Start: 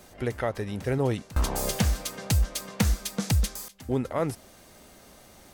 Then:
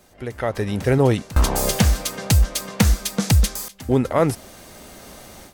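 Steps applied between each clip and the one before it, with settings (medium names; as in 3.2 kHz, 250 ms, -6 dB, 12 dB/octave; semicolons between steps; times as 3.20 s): level rider gain up to 14 dB; trim -3 dB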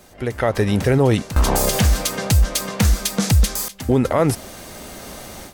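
loudness maximiser +12.5 dB; trim -6.5 dB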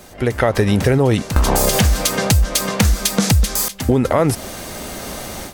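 compression 4:1, threshold -18 dBFS, peak gain reduction 7 dB; trim +6.5 dB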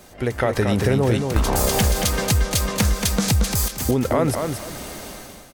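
fade out at the end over 0.65 s; on a send: feedback delay 228 ms, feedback 21%, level -5.5 dB; on the sum: trim -5 dB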